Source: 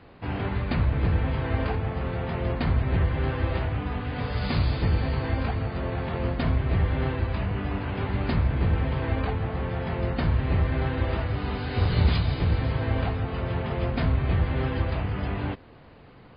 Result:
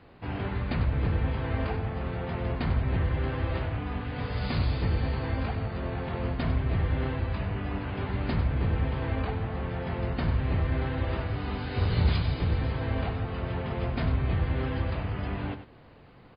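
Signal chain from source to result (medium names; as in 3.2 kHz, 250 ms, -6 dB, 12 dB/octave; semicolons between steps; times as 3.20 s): delay 96 ms -10.5 dB; trim -3.5 dB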